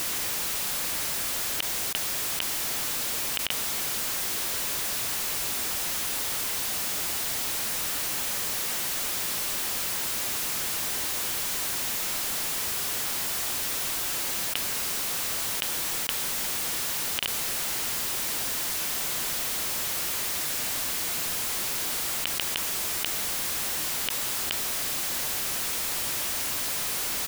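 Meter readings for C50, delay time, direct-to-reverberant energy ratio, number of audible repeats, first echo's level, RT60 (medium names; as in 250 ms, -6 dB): no reverb, 115 ms, no reverb, 1, -22.0 dB, no reverb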